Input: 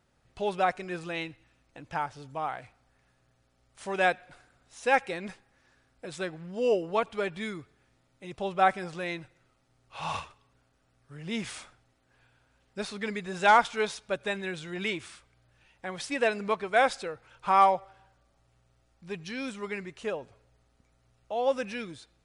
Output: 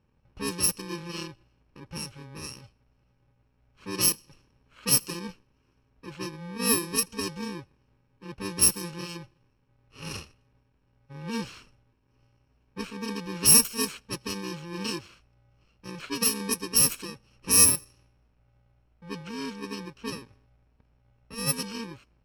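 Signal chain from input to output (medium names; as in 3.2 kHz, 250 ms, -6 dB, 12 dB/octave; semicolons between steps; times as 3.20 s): bit-reversed sample order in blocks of 64 samples; level-controlled noise filter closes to 2.2 kHz, open at -20.5 dBFS; trim +4 dB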